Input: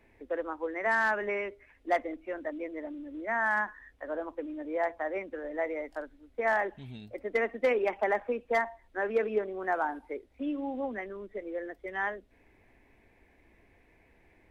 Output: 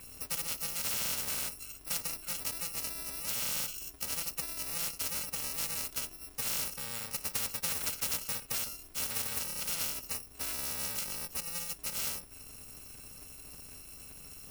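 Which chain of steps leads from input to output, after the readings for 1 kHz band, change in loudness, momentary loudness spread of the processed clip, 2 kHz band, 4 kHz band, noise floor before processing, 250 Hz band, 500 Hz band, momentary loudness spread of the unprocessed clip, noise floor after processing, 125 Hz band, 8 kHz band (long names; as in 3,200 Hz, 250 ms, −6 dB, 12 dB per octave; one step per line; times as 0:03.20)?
−14.0 dB, −1.5 dB, 15 LU, −11.5 dB, +16.5 dB, −64 dBFS, −13.5 dB, −20.0 dB, 13 LU, −52 dBFS, +4.5 dB, can't be measured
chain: samples in bit-reversed order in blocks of 128 samples
every bin compressed towards the loudest bin 4 to 1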